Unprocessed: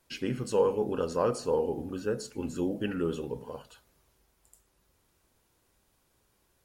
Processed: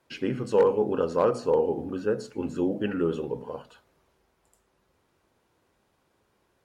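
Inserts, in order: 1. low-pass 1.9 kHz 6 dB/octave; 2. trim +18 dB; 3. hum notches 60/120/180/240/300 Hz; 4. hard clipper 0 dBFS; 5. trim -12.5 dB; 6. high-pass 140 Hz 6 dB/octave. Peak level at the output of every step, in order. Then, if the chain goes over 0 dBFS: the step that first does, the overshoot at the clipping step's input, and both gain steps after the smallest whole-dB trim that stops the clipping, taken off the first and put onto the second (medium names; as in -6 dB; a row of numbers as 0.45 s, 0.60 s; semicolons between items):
-13.5 dBFS, +4.5 dBFS, +4.5 dBFS, 0.0 dBFS, -12.5 dBFS, -10.5 dBFS; step 2, 4.5 dB; step 2 +13 dB, step 5 -7.5 dB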